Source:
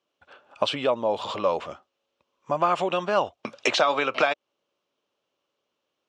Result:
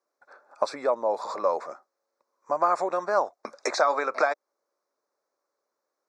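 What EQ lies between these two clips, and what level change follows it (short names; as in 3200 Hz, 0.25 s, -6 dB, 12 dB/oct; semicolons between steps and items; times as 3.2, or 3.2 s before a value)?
HPF 410 Hz 12 dB/oct; Butterworth band-stop 3000 Hz, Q 1.1; 0.0 dB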